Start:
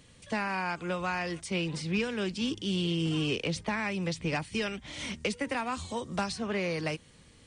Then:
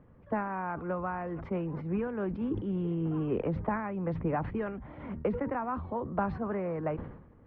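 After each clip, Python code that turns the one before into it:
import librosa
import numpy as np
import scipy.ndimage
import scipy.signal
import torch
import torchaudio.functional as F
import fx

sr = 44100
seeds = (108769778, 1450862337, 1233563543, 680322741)

y = scipy.signal.sosfilt(scipy.signal.butter(4, 1300.0, 'lowpass', fs=sr, output='sos'), x)
y = fx.hpss(y, sr, part='harmonic', gain_db=-5)
y = fx.sustainer(y, sr, db_per_s=69.0)
y = y * librosa.db_to_amplitude(3.5)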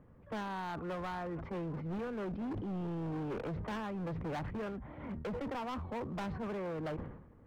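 y = np.clip(x, -10.0 ** (-34.0 / 20.0), 10.0 ** (-34.0 / 20.0))
y = y * librosa.db_to_amplitude(-2.0)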